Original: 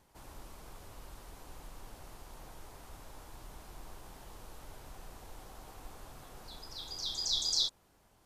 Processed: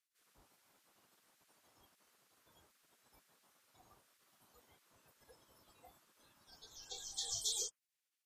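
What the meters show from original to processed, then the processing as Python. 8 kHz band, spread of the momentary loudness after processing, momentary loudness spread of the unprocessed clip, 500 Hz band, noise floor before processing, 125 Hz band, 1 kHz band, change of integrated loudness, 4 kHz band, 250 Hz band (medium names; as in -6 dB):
-1.0 dB, 19 LU, 22 LU, -8.5 dB, -67 dBFS, -17.5 dB, -13.0 dB, -7.5 dB, -11.0 dB, -16.5 dB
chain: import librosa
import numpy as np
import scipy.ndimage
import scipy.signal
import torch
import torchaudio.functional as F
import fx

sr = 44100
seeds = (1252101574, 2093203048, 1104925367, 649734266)

y = fx.noise_reduce_blind(x, sr, reduce_db=24)
y = fx.spec_gate(y, sr, threshold_db=-20, keep='weak')
y = y * librosa.db_to_amplitude(9.0)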